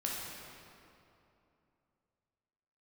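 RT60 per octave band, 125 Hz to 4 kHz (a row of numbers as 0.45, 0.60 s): 3.2, 3.1, 2.9, 2.7, 2.2, 1.8 s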